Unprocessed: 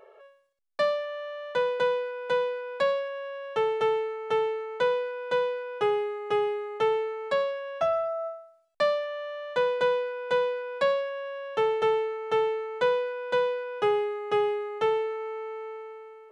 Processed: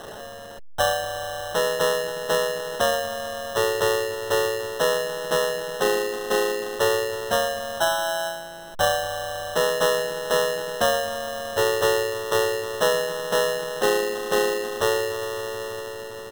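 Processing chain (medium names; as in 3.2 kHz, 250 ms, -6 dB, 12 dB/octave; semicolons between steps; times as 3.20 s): jump at every zero crossing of -36 dBFS; harmony voices -3 st -10 dB, +4 st -2 dB; sample-and-hold 19×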